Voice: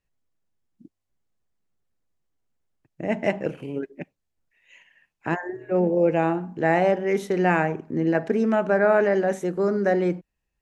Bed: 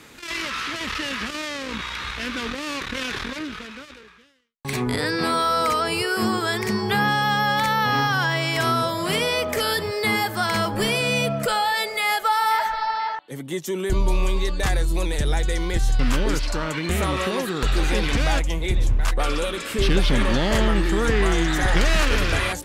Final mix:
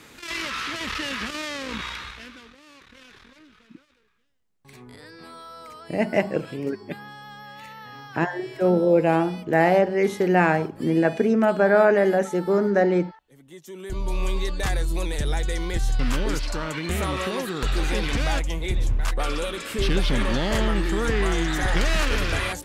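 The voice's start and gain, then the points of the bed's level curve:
2.90 s, +2.0 dB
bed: 0:01.89 −1.5 dB
0:02.51 −21 dB
0:13.27 −21 dB
0:14.28 −3 dB

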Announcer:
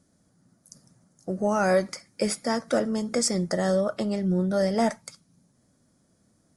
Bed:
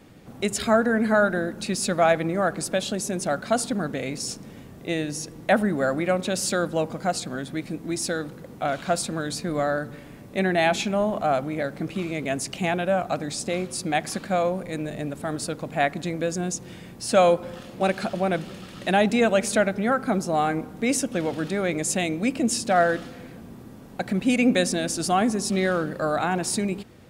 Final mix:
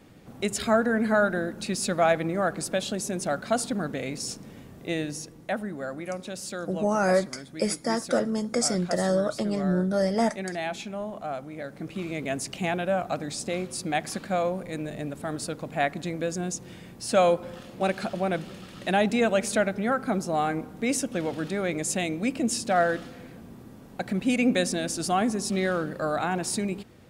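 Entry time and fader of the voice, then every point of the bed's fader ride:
5.40 s, −0.5 dB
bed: 0:05.05 −2.5 dB
0:05.57 −10.5 dB
0:11.50 −10.5 dB
0:12.12 −3 dB

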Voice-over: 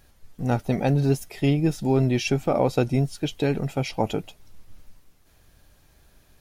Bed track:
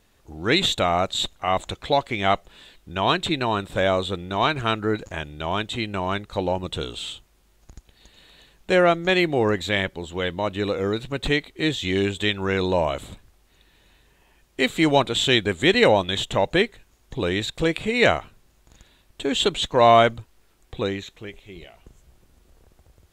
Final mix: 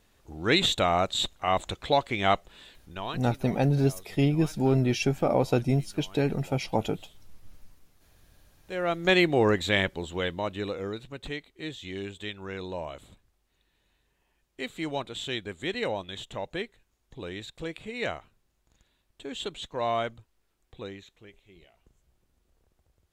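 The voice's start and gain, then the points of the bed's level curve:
2.75 s, −2.5 dB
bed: 0:02.72 −3 dB
0:03.44 −26 dB
0:08.51 −26 dB
0:09.08 −1.5 dB
0:09.99 −1.5 dB
0:11.31 −14 dB

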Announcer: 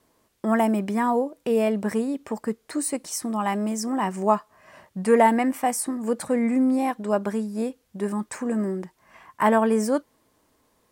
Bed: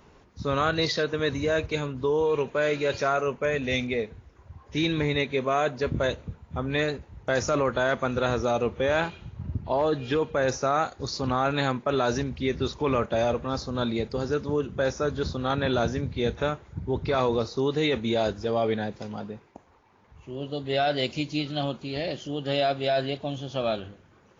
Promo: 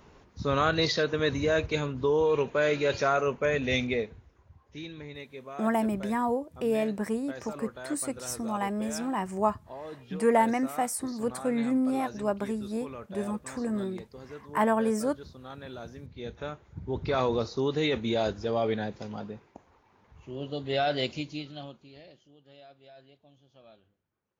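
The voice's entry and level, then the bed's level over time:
5.15 s, −5.5 dB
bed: 0:03.93 −0.5 dB
0:04.93 −17 dB
0:15.87 −17 dB
0:17.11 −2.5 dB
0:21.05 −2.5 dB
0:22.41 −28 dB

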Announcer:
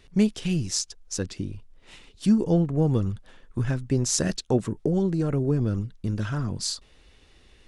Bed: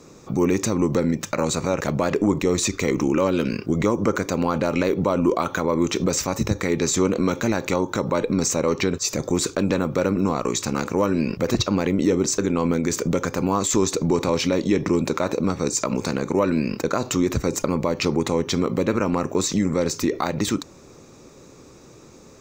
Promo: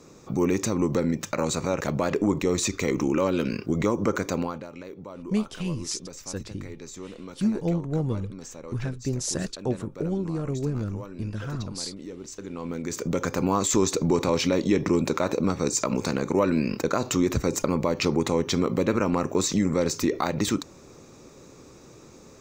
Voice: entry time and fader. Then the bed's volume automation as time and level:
5.15 s, −4.5 dB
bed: 0:04.38 −3.5 dB
0:04.69 −19.5 dB
0:12.19 −19.5 dB
0:13.29 −2 dB

